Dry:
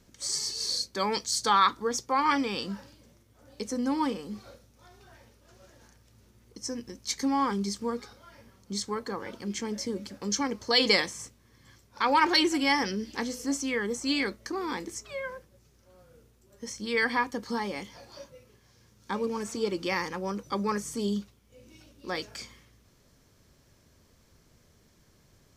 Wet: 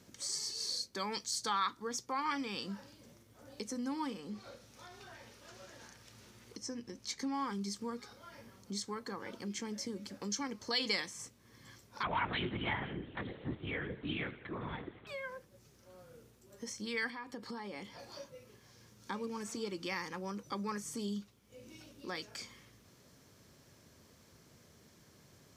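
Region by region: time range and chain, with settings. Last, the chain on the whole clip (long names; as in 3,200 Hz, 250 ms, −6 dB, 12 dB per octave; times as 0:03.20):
0:04.19–0:07.34: high-shelf EQ 8,900 Hz −11 dB + one half of a high-frequency compander encoder only
0:12.03–0:15.07: repeating echo 84 ms, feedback 48%, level −16.5 dB + linear-prediction vocoder at 8 kHz whisper
0:17.10–0:17.99: high-shelf EQ 8,600 Hz −7 dB + notch filter 6,200 Hz, Q 5.7 + downward compressor 3 to 1, threshold −37 dBFS
whole clip: high-pass filter 100 Hz 12 dB per octave; dynamic equaliser 520 Hz, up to −5 dB, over −38 dBFS, Q 0.86; downward compressor 1.5 to 1, threshold −53 dBFS; level +1.5 dB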